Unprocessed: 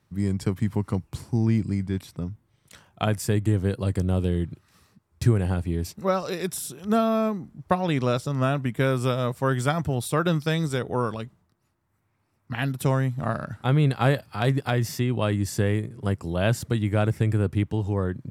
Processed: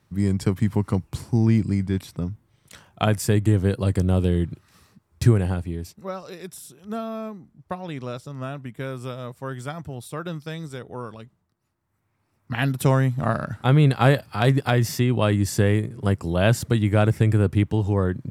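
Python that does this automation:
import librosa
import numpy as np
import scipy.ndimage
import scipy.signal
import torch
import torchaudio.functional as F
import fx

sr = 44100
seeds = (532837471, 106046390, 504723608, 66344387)

y = fx.gain(x, sr, db=fx.line((5.32, 3.5), (6.08, -8.5), (11.08, -8.5), (12.64, 4.0)))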